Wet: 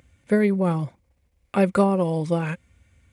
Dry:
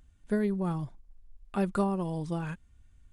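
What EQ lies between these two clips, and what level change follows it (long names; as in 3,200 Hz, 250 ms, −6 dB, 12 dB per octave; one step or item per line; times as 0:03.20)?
high-pass filter 68 Hz 24 dB per octave
parametric band 530 Hz +11.5 dB 0.25 octaves
parametric band 2,200 Hz +11.5 dB 0.33 octaves
+8.0 dB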